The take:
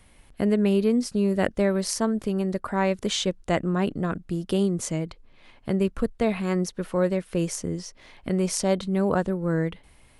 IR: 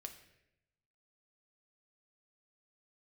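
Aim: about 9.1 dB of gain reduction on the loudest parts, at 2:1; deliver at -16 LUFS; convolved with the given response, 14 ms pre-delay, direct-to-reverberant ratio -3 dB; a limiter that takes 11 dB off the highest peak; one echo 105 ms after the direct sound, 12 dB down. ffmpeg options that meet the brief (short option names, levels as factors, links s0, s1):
-filter_complex "[0:a]acompressor=threshold=0.0178:ratio=2,alimiter=level_in=1.33:limit=0.0631:level=0:latency=1,volume=0.75,aecho=1:1:105:0.251,asplit=2[s0][s1];[1:a]atrim=start_sample=2205,adelay=14[s2];[s1][s2]afir=irnorm=-1:irlink=0,volume=2.37[s3];[s0][s3]amix=inputs=2:normalize=0,volume=6.68"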